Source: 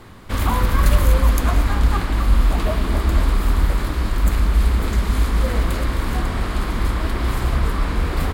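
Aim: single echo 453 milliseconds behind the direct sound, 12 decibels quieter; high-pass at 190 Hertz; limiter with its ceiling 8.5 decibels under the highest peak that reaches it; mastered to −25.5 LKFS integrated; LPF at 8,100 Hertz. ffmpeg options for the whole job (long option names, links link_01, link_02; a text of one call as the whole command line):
ffmpeg -i in.wav -af "highpass=190,lowpass=8100,alimiter=limit=-19.5dB:level=0:latency=1,aecho=1:1:453:0.251,volume=3.5dB" out.wav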